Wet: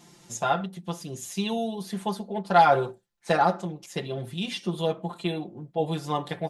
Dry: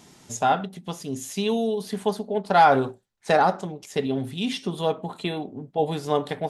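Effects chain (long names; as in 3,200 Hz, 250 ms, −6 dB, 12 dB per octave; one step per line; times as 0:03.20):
comb filter 5.8 ms, depth 96%
level −5 dB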